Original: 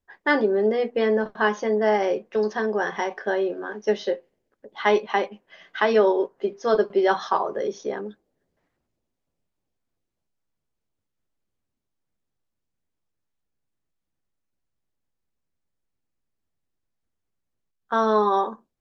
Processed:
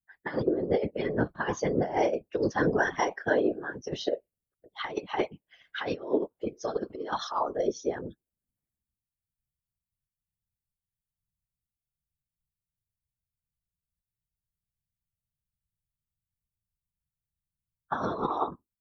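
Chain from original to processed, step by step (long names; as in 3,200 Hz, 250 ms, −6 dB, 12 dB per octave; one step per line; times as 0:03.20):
spectral dynamics exaggerated over time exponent 1.5
compressor whose output falls as the input rises −27 dBFS, ratio −0.5
random phases in short frames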